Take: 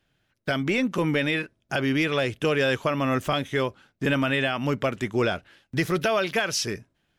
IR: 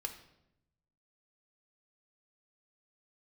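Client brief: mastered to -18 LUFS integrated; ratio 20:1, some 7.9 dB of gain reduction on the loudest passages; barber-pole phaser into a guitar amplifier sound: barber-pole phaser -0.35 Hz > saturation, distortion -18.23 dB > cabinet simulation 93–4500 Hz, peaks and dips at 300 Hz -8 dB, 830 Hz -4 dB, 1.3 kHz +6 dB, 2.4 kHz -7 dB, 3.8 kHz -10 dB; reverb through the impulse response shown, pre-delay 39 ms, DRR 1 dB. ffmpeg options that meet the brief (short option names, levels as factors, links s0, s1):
-filter_complex "[0:a]acompressor=threshold=0.0447:ratio=20,asplit=2[s0][s1];[1:a]atrim=start_sample=2205,adelay=39[s2];[s1][s2]afir=irnorm=-1:irlink=0,volume=0.944[s3];[s0][s3]amix=inputs=2:normalize=0,asplit=2[s4][s5];[s5]afreqshift=-0.35[s6];[s4][s6]amix=inputs=2:normalize=1,asoftclip=threshold=0.0596,highpass=93,equalizer=f=300:t=q:w=4:g=-8,equalizer=f=830:t=q:w=4:g=-4,equalizer=f=1300:t=q:w=4:g=6,equalizer=f=2400:t=q:w=4:g=-7,equalizer=f=3800:t=q:w=4:g=-10,lowpass=f=4500:w=0.5412,lowpass=f=4500:w=1.3066,volume=7.94"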